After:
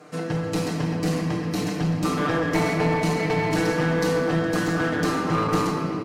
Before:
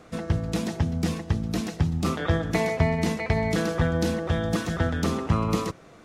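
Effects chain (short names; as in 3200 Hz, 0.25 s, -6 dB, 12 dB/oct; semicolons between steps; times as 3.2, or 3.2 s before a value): HPF 200 Hz 12 dB/oct; notch 3500 Hz, Q 8.5; comb 6.7 ms, depth 88%; shoebox room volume 170 m³, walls hard, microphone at 0.52 m; one-sided clip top -21.5 dBFS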